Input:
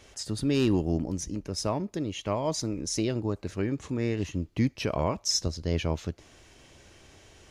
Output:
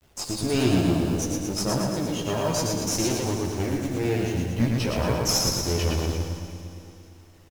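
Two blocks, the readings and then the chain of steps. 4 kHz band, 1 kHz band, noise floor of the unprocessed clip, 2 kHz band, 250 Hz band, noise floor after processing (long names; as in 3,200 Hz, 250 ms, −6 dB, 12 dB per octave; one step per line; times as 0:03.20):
+5.0 dB, +4.5 dB, −57 dBFS, +6.5 dB, +4.0 dB, −51 dBFS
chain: hold until the input has moved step −48 dBFS
noise gate −51 dBFS, range −8 dB
high-shelf EQ 4,000 Hz +6.5 dB
in parallel at −10 dB: decimation without filtering 23×
on the sum: tube saturation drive 20 dB, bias 0.75
on a send: repeating echo 114 ms, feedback 59%, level −3 dB
on the sum: multi-voice chorus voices 2, 0.29 Hz, delay 14 ms, depth 3 ms
four-comb reverb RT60 3 s, combs from 31 ms, DRR 8.5 dB
level +6.5 dB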